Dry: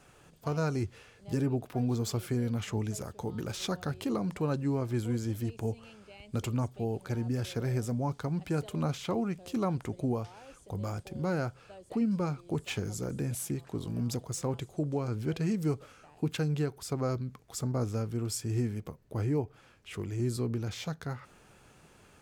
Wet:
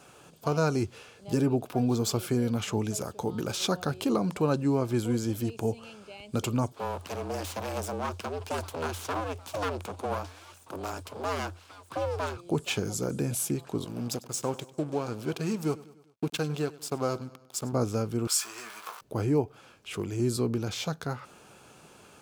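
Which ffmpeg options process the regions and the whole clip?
ffmpeg -i in.wav -filter_complex "[0:a]asettb=1/sr,asplit=3[link_01][link_02][link_03];[link_01]atrim=end=6.724[link_04];[link_02]atrim=start=6.72:end=12.37,asetpts=PTS-STARTPTS,afade=type=in:duration=0.004:curve=qsin,afade=type=out:start_time=5.646:duration=0.004:curve=qsin,aeval=exprs='abs(val(0))':channel_layout=same,afreqshift=87,lowshelf=frequency=350:gain=-8[link_05];[link_03]atrim=start=12.366[link_06];[link_04][link_05]acrossfade=duration=0.004:curve1=hsin:curve2=qsin[link_07];[link_07][link_06]acrossfade=duration=0.004:curve1=qsin:curve2=hsin,asettb=1/sr,asplit=3[link_08][link_09][link_10];[link_08]atrim=end=13.854[link_11];[link_09]atrim=start=13.85:end=17.73,asetpts=PTS-STARTPTS,afade=type=in:duration=0.004:curve=qsin,afade=type=out:start_time=3.876:duration=0.004:curve=qsin,lowshelf=frequency=390:gain=-4.5,aeval=exprs='sgn(val(0))*max(abs(val(0))-0.00422,0)':channel_layout=same,aecho=1:1:99|198|297|396:0.106|0.0583|0.032|0.0176,atrim=end_sample=171108[link_12];[link_10]atrim=start=17.726[link_13];[link_11][link_12]acrossfade=duration=0.004:curve1=hsin:curve2=qsin[link_14];[link_14][link_13]acrossfade=duration=0.004:curve1=qsin:curve2=hsin,asettb=1/sr,asplit=3[link_15][link_16][link_17];[link_15]atrim=end=18.274[link_18];[link_16]atrim=start=18.27:end=19.01,asetpts=PTS-STARTPTS,afade=type=in:duration=0.004:curve=qsin,afade=type=out:start_time=0.736:duration=0.004:curve=qsin,aeval=exprs='val(0)+0.5*0.00794*sgn(val(0))':channel_layout=same,highpass=frequency=1200:width_type=q:width=2.1,asplit=2[link_19][link_20];[link_20]adelay=18,volume=-6dB[link_21];[link_19][link_21]amix=inputs=2:normalize=0,atrim=end_sample=32634[link_22];[link_17]atrim=start=19.006[link_23];[link_18][link_22]acrossfade=duration=0.004:curve1=hsin:curve2=qsin[link_24];[link_24][link_23]acrossfade=duration=0.004:curve1=qsin:curve2=hsin,highpass=frequency=210:poles=1,equalizer=frequency=1900:width_type=o:width=0.31:gain=-8.5,volume=7dB" out.wav

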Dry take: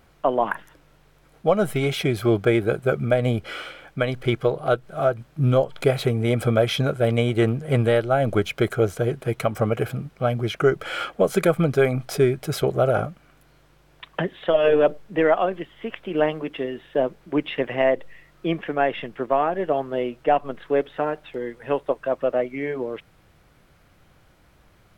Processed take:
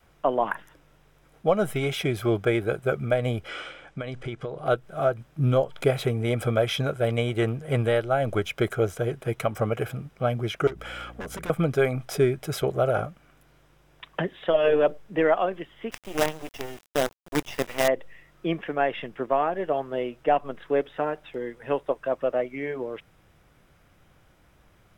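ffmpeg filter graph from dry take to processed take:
ffmpeg -i in.wav -filter_complex "[0:a]asettb=1/sr,asplit=3[link_01][link_02][link_03];[link_01]atrim=end=3.484[link_04];[link_02]atrim=start=3.48:end=4.66,asetpts=PTS-STARTPTS,afade=type=in:duration=0.004:curve=qsin,afade=type=out:start_time=1.176:duration=0.004:curve=qsin,lowpass=frequency=9100:width=0.5412,lowpass=frequency=9100:width=1.3066,acompressor=threshold=-26dB:ratio=6:attack=3.2:release=140:knee=1:detection=peak[link_05];[link_03]atrim=start=4.656[link_06];[link_04][link_05]acrossfade=duration=0.004:curve1=hsin:curve2=qsin[link_07];[link_07][link_06]acrossfade=duration=0.004:curve1=qsin:curve2=hsin,asettb=1/sr,asplit=3[link_08][link_09][link_10];[link_08]atrim=end=10.674[link_11];[link_09]atrim=start=10.67:end=11.5,asetpts=PTS-STARTPTS,afade=type=in:duration=0.004:curve=qsin,afade=type=out:start_time=0.826:duration=0.004:curve=qsin,aeval=exprs='0.141*(abs(mod(val(0)/0.141+3,4)-2)-1)':channel_layout=same,acompressor=threshold=-31dB:ratio=5:attack=3.2:release=140:knee=1:detection=peak,aeval=exprs='val(0)+0.00794*(sin(2*PI*60*n/s)+sin(2*PI*2*60*n/s)/2+sin(2*PI*3*60*n/s)/3+sin(2*PI*4*60*n/s)/4+sin(2*PI*5*60*n/s)/5)':channel_layout=same[link_12];[link_10]atrim=start=11.496[link_13];[link_11][link_12]acrossfade=duration=0.004:curve1=hsin:curve2=qsin[link_14];[link_14][link_13]acrossfade=duration=0.004:curve1=qsin:curve2=hsin,asettb=1/sr,asplit=3[link_15][link_16][link_17];[link_15]atrim=end=15.914[link_18];[link_16]atrim=start=15.91:end=17.88,asetpts=PTS-STARTPTS,afade=type=in:duration=0.004:curve=qsin,afade=type=out:start_time=1.966:duration=0.004:curve=qsin,lowshelf=frequency=380:gain=-3.5,acrusher=bits=4:dc=4:mix=0:aa=0.000001[link_19];[link_17]atrim=start=17.876[link_20];[link_18][link_19]acrossfade=duration=0.004:curve1=hsin:curve2=qsin[link_21];[link_21][link_20]acrossfade=duration=0.004:curve1=qsin:curve2=hsin,bandreject=frequency=4300:width=9,adynamicequalizer=threshold=0.0251:dfrequency=220:dqfactor=0.81:tfrequency=220:tqfactor=0.81:attack=5:release=100:ratio=0.375:range=2.5:mode=cutabove:tftype=bell,volume=-2.5dB" out.wav

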